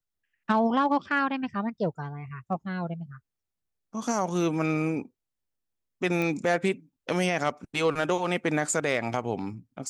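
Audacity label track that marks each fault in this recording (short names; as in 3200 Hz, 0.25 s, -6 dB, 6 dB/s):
6.220000	6.220000	pop -17 dBFS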